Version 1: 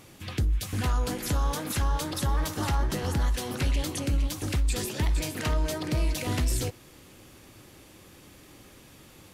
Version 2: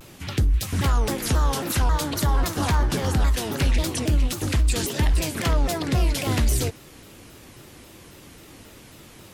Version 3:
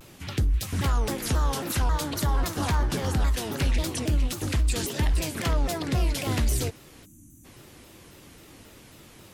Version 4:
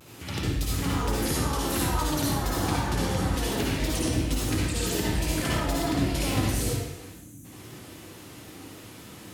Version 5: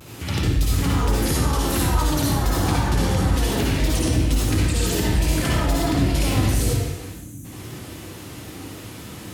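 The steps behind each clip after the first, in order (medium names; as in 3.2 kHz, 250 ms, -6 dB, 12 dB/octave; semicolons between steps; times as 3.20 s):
vibrato with a chosen wave saw down 3.7 Hz, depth 250 cents; trim +5.5 dB
time-frequency box 7.05–7.45 s, 330–5800 Hz -26 dB; trim -3.5 dB
high-pass 74 Hz; compression, threshold -28 dBFS, peak gain reduction 7 dB; reverberation RT60 0.90 s, pre-delay 52 ms, DRR -5.5 dB; trim -1.5 dB
high-pass 45 Hz; bass shelf 86 Hz +10.5 dB; in parallel at +1 dB: peak limiter -22 dBFS, peak gain reduction 11 dB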